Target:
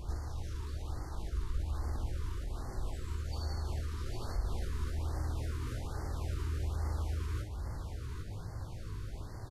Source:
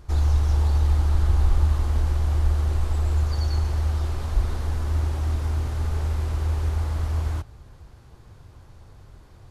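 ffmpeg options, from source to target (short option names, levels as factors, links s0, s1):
-filter_complex "[0:a]acompressor=threshold=0.0141:ratio=3,alimiter=level_in=2.37:limit=0.0631:level=0:latency=1:release=16,volume=0.422,asplit=2[s0][s1];[s1]adelay=19,volume=0.447[s2];[s0][s2]amix=inputs=2:normalize=0,asplit=2[s3][s4];[s4]aecho=0:1:61|805:0.447|0.473[s5];[s3][s5]amix=inputs=2:normalize=0,afftfilt=real='re*(1-between(b*sr/1024,630*pow(3100/630,0.5+0.5*sin(2*PI*1.2*pts/sr))/1.41,630*pow(3100/630,0.5+0.5*sin(2*PI*1.2*pts/sr))*1.41))':imag='im*(1-between(b*sr/1024,630*pow(3100/630,0.5+0.5*sin(2*PI*1.2*pts/sr))/1.41,630*pow(3100/630,0.5+0.5*sin(2*PI*1.2*pts/sr))*1.41))':win_size=1024:overlap=0.75,volume=1.41"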